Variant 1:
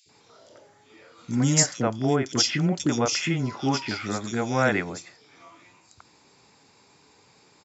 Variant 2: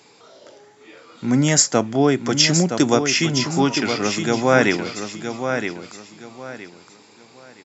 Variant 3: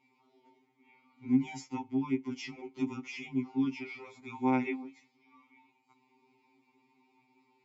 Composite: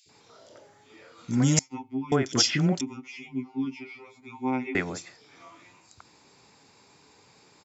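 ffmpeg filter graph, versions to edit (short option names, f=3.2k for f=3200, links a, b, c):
-filter_complex "[2:a]asplit=2[a][b];[0:a]asplit=3[c][d][e];[c]atrim=end=1.592[f];[a]atrim=start=1.588:end=2.122[g];[d]atrim=start=2.118:end=2.812[h];[b]atrim=start=2.808:end=4.752[i];[e]atrim=start=4.748[j];[f][g]acrossfade=d=0.004:c1=hsin:c2=hsin[k];[k][h]acrossfade=d=0.004:c1=hsin:c2=hsin[l];[l][i]acrossfade=d=0.004:c1=hsin:c2=hsin[m];[m][j]acrossfade=d=0.004:c1=hsin:c2=hsin"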